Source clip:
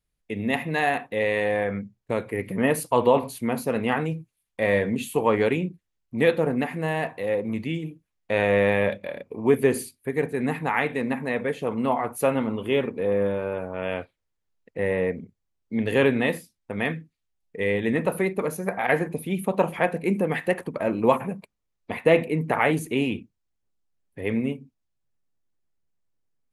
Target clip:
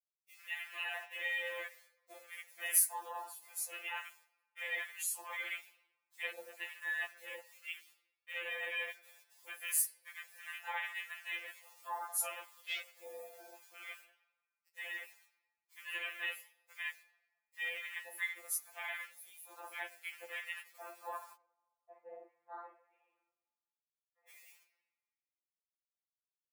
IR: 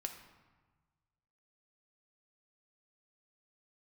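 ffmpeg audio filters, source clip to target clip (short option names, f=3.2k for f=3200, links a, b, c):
-filter_complex "[0:a]acrusher=bits=8:dc=4:mix=0:aa=0.000001,highpass=f=590:w=0.5412,highpass=f=590:w=1.3066,alimiter=limit=-18.5dB:level=0:latency=1:release=41,aderivative[a];[1:a]atrim=start_sample=2205[b];[a][b]afir=irnorm=-1:irlink=0,acontrast=61,asettb=1/sr,asplit=3[c][d][e];[c]atrim=end=21.354[f];[d]atrim=start=21.35:end=24.29,asetpts=PTS-STARTPTS,afade=t=in:d=0.004:c=qsin,afade=t=out:st=2.936:d=0.004:c=qsin,lowpass=f=1.2k:w=0.5412,lowpass=f=1.2k:w=1.3066[g];[e]atrim=start=24.286[h];[f][g]acrossfade=d=0.004:c1=hsin:c2=qsin[i];[i][h]acrossfade=d=0.004:c1=qsin:c2=hsin,afwtdn=0.01,flanger=delay=5.5:depth=7.2:regen=89:speed=0.47:shape=sinusoidal,afftfilt=real='re*2.83*eq(mod(b,8),0)':imag='im*2.83*eq(mod(b,8),0)':win_size=2048:overlap=0.75,volume=6dB"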